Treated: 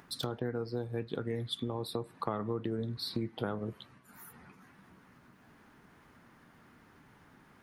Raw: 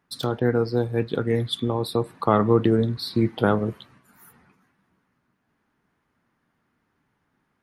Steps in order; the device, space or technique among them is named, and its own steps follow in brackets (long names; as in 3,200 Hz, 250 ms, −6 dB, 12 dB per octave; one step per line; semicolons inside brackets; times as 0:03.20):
upward and downward compression (upward compression, threshold −41 dBFS; downward compressor 4 to 1, threshold −29 dBFS, peak gain reduction 14 dB)
level −4 dB